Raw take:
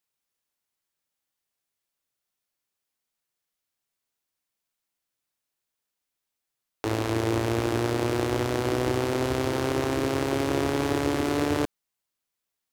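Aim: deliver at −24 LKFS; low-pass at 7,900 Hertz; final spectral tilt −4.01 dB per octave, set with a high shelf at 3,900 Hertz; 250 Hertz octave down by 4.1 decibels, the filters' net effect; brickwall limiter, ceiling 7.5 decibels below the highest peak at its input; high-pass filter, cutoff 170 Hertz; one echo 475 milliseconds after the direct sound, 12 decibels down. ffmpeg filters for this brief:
ffmpeg -i in.wav -af "highpass=170,lowpass=7900,equalizer=frequency=250:width_type=o:gain=-5,highshelf=frequency=3900:gain=5.5,alimiter=limit=-17.5dB:level=0:latency=1,aecho=1:1:475:0.251,volume=9dB" out.wav

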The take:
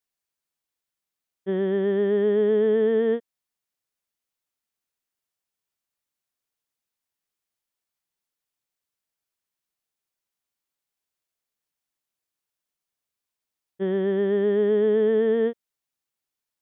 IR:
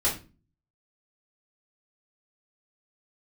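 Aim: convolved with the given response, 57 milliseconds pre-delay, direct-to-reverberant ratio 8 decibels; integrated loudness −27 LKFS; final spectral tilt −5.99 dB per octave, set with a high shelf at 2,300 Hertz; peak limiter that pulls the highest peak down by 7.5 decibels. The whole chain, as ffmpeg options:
-filter_complex "[0:a]highshelf=frequency=2300:gain=-4,alimiter=limit=-21dB:level=0:latency=1,asplit=2[link_01][link_02];[1:a]atrim=start_sample=2205,adelay=57[link_03];[link_02][link_03]afir=irnorm=-1:irlink=0,volume=-18dB[link_04];[link_01][link_04]amix=inputs=2:normalize=0,volume=1dB"

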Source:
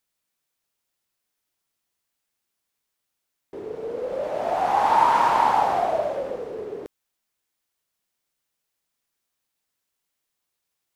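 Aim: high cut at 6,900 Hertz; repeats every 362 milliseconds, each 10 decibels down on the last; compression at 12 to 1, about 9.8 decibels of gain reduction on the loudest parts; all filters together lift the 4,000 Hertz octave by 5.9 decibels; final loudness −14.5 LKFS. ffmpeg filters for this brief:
ffmpeg -i in.wav -af "lowpass=6900,equalizer=frequency=4000:width_type=o:gain=8,acompressor=threshold=-24dB:ratio=12,aecho=1:1:362|724|1086|1448:0.316|0.101|0.0324|0.0104,volume=15dB" out.wav

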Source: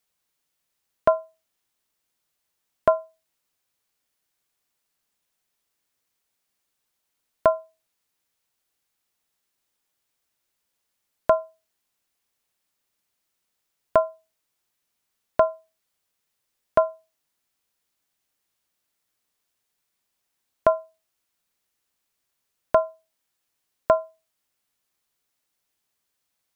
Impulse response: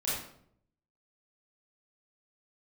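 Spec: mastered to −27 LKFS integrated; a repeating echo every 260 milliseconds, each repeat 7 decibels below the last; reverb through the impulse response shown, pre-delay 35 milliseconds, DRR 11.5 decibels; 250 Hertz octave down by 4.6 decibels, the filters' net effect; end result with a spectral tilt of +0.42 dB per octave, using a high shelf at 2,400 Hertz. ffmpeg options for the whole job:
-filter_complex "[0:a]equalizer=frequency=250:width_type=o:gain=-6.5,highshelf=frequency=2400:gain=3,aecho=1:1:260|520|780|1040|1300:0.447|0.201|0.0905|0.0407|0.0183,asplit=2[link_01][link_02];[1:a]atrim=start_sample=2205,adelay=35[link_03];[link_02][link_03]afir=irnorm=-1:irlink=0,volume=-17.5dB[link_04];[link_01][link_04]amix=inputs=2:normalize=0"

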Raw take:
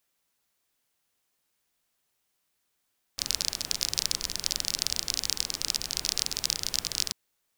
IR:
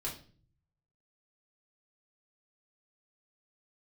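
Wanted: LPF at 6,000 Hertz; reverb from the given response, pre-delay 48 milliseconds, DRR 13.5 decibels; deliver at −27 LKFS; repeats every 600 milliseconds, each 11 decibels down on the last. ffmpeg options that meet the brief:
-filter_complex "[0:a]lowpass=6000,aecho=1:1:600|1200|1800:0.282|0.0789|0.0221,asplit=2[link_01][link_02];[1:a]atrim=start_sample=2205,adelay=48[link_03];[link_02][link_03]afir=irnorm=-1:irlink=0,volume=-14.5dB[link_04];[link_01][link_04]amix=inputs=2:normalize=0,volume=3.5dB"

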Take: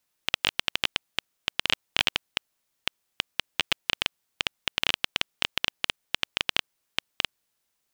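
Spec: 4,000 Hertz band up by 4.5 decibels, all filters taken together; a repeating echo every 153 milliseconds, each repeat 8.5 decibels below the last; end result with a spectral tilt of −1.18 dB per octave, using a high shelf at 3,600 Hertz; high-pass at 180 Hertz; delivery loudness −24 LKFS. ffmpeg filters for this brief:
ffmpeg -i in.wav -af "highpass=180,highshelf=frequency=3600:gain=3,equalizer=frequency=4000:width_type=o:gain=4.5,aecho=1:1:153|306|459|612:0.376|0.143|0.0543|0.0206,volume=0.5dB" out.wav

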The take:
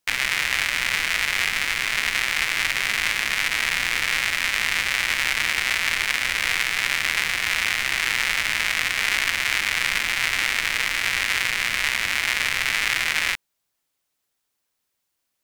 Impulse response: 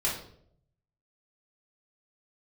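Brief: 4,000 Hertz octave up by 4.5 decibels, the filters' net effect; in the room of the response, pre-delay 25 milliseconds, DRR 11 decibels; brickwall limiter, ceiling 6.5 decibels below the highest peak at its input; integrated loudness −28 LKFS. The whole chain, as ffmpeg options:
-filter_complex "[0:a]equalizer=frequency=4000:width_type=o:gain=6,alimiter=limit=-8dB:level=0:latency=1,asplit=2[link_01][link_02];[1:a]atrim=start_sample=2205,adelay=25[link_03];[link_02][link_03]afir=irnorm=-1:irlink=0,volume=-19dB[link_04];[link_01][link_04]amix=inputs=2:normalize=0,volume=-6dB"

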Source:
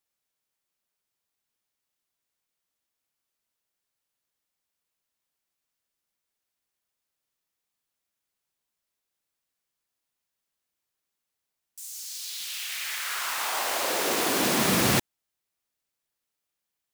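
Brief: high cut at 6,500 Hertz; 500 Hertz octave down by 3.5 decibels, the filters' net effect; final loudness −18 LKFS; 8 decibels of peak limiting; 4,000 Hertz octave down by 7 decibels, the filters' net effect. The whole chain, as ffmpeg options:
ffmpeg -i in.wav -af "lowpass=6500,equalizer=frequency=500:width_type=o:gain=-4.5,equalizer=frequency=4000:width_type=o:gain=-8.5,volume=14.5dB,alimiter=limit=-7dB:level=0:latency=1" out.wav

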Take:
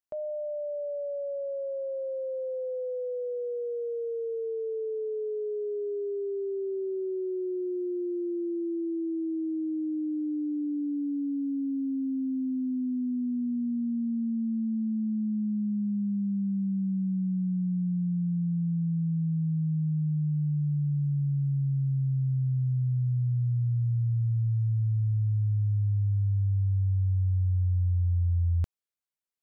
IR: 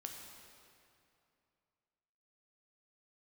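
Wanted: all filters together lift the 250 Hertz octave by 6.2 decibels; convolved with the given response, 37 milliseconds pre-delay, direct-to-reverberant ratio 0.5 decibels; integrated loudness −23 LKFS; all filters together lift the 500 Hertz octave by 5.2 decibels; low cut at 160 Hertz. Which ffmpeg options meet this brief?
-filter_complex "[0:a]highpass=160,equalizer=frequency=250:width_type=o:gain=8.5,equalizer=frequency=500:width_type=o:gain=3.5,asplit=2[link_01][link_02];[1:a]atrim=start_sample=2205,adelay=37[link_03];[link_02][link_03]afir=irnorm=-1:irlink=0,volume=2.5dB[link_04];[link_01][link_04]amix=inputs=2:normalize=0"

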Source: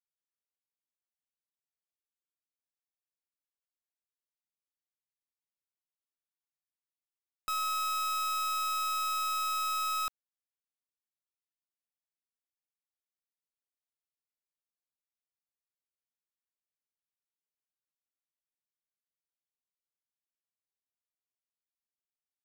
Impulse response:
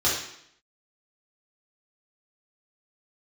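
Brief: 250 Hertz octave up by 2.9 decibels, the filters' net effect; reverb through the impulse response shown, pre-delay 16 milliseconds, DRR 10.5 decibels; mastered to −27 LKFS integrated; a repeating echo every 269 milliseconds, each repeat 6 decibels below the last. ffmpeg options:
-filter_complex "[0:a]equalizer=frequency=250:width_type=o:gain=4,aecho=1:1:269|538|807|1076|1345|1614:0.501|0.251|0.125|0.0626|0.0313|0.0157,asplit=2[link_01][link_02];[1:a]atrim=start_sample=2205,adelay=16[link_03];[link_02][link_03]afir=irnorm=-1:irlink=0,volume=-24dB[link_04];[link_01][link_04]amix=inputs=2:normalize=0,volume=4.5dB"

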